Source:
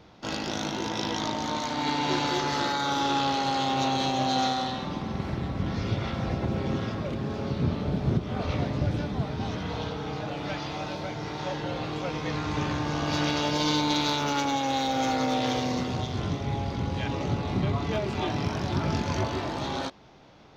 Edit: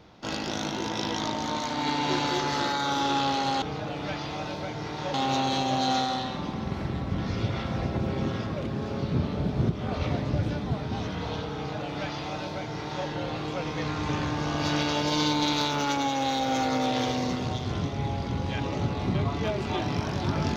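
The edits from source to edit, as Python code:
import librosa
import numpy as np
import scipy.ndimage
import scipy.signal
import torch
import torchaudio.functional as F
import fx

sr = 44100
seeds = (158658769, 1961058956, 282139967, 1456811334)

y = fx.edit(x, sr, fx.duplicate(start_s=10.03, length_s=1.52, to_s=3.62), tone=tone)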